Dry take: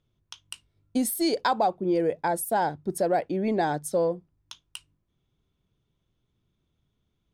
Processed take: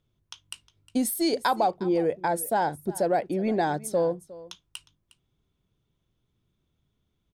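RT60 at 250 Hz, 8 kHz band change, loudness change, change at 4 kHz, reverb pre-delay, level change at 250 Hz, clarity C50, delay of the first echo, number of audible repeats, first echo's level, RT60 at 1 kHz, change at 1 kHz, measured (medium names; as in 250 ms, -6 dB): no reverb, 0.0 dB, 0.0 dB, 0.0 dB, no reverb, 0.0 dB, no reverb, 359 ms, 1, -19.0 dB, no reverb, 0.0 dB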